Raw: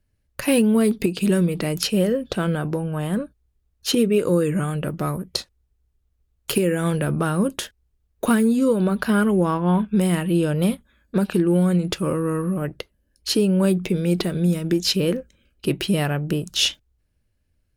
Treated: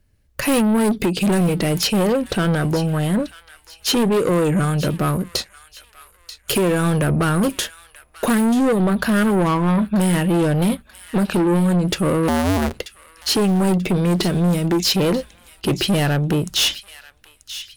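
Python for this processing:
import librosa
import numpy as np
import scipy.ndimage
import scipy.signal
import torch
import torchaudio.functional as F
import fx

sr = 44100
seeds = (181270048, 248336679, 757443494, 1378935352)

y = fx.cycle_switch(x, sr, every=2, mode='inverted', at=(12.28, 12.8))
y = 10.0 ** (-22.5 / 20.0) * np.tanh(y / 10.0 ** (-22.5 / 20.0))
y = fx.echo_wet_highpass(y, sr, ms=936, feedback_pct=34, hz=1800.0, wet_db=-13)
y = y * 10.0 ** (8.5 / 20.0)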